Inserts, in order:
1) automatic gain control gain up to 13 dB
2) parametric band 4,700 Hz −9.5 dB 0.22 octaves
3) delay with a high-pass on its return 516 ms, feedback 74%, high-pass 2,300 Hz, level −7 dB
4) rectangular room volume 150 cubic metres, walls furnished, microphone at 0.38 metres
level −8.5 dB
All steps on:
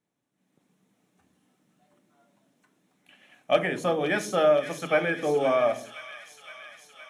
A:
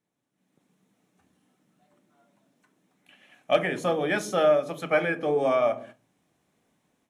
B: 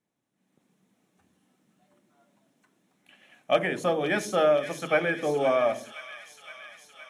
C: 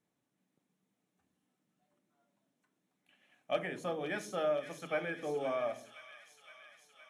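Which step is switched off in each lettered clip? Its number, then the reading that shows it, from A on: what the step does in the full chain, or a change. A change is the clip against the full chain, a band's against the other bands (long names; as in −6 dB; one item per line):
3, change in momentary loudness spread −16 LU
4, echo-to-direct ratio −7.5 dB to −9.5 dB
1, change in integrated loudness −11.5 LU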